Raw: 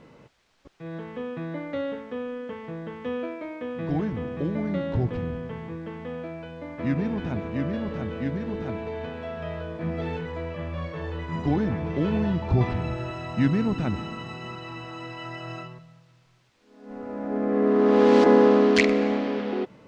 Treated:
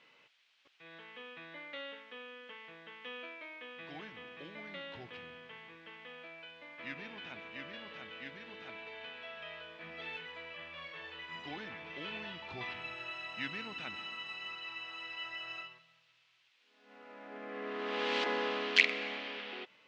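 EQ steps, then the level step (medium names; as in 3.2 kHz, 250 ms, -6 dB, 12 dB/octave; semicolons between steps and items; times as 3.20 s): band-pass filter 2.9 kHz, Q 1.9; +2.0 dB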